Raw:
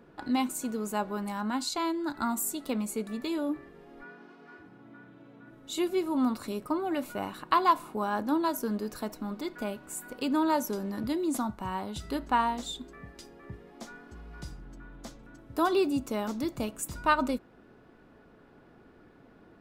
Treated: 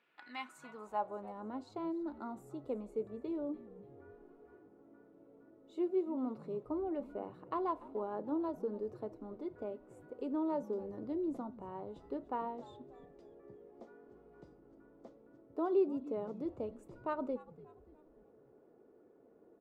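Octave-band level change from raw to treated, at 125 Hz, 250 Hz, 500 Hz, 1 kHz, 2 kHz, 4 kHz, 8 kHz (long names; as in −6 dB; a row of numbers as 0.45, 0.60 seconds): −12.0 dB, −9.0 dB, −4.5 dB, −13.0 dB, −18.0 dB, below −20 dB, below −30 dB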